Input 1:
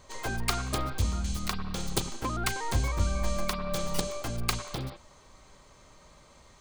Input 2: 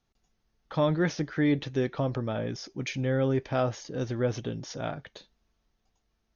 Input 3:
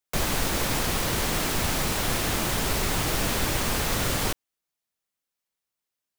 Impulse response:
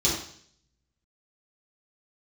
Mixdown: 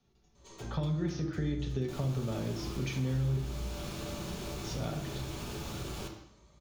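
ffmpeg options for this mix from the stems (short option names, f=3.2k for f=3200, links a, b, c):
-filter_complex "[0:a]alimiter=limit=-20dB:level=0:latency=1:release=172,adelay=350,volume=-16.5dB,asplit=2[a][b];[b]volume=-5.5dB[c];[1:a]acrossover=split=180|3000[d][e][f];[e]acompressor=threshold=-30dB:ratio=6[g];[d][g][f]amix=inputs=3:normalize=0,volume=1.5dB,asplit=3[h][i][j];[h]atrim=end=3.37,asetpts=PTS-STARTPTS,afade=t=out:st=3.366:d=0.004:c=hsin[k];[i]atrim=start=3.37:end=4.64,asetpts=PTS-STARTPTS,volume=0[l];[j]atrim=start=4.64,asetpts=PTS-STARTPTS,afade=t=in:d=0.004:c=hsin[m];[k][l][m]concat=n=3:v=0:a=1,asplit=2[n][o];[o]volume=-12.5dB[p];[2:a]bandreject=f=1.9k:w=10,adelay=1750,volume=-13.5dB,asplit=2[q][r];[r]volume=-12dB[s];[3:a]atrim=start_sample=2205[t];[c][p][s]amix=inputs=3:normalize=0[u];[u][t]afir=irnorm=-1:irlink=0[v];[a][n][q][v]amix=inputs=4:normalize=0,highshelf=f=4.7k:g=-7,acompressor=threshold=-39dB:ratio=2"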